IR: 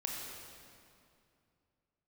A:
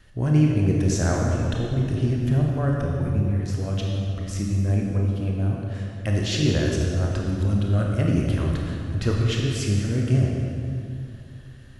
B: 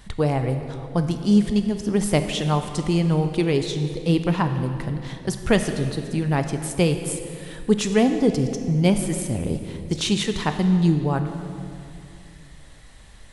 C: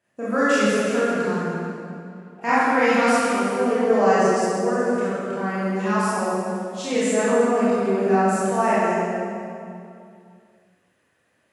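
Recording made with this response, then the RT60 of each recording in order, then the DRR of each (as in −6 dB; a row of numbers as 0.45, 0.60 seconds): A; 2.5, 2.5, 2.5 seconds; −1.5, 7.0, −11.5 decibels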